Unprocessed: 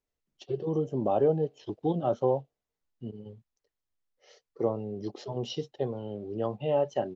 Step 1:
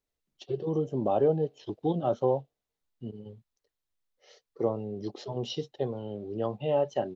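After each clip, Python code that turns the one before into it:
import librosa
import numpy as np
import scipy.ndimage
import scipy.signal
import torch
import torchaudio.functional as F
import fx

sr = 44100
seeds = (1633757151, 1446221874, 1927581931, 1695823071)

y = fx.peak_eq(x, sr, hz=3800.0, db=3.5, octaves=0.41)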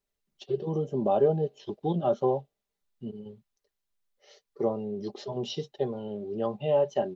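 y = x + 0.49 * np.pad(x, (int(5.0 * sr / 1000.0), 0))[:len(x)]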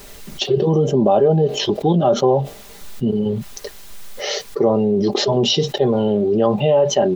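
y = fx.env_flatten(x, sr, amount_pct=70)
y = y * 10.0 ** (6.5 / 20.0)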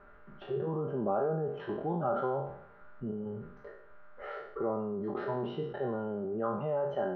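y = fx.spec_trails(x, sr, decay_s=0.69)
y = y + 10.0 ** (-46.0 / 20.0) * np.sin(2.0 * np.pi * 600.0 * np.arange(len(y)) / sr)
y = fx.ladder_lowpass(y, sr, hz=1500.0, resonance_pct=75)
y = y * 10.0 ** (-7.5 / 20.0)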